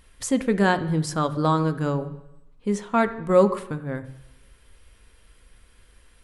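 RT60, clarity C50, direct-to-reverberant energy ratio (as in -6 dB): 0.85 s, 14.0 dB, 9.5 dB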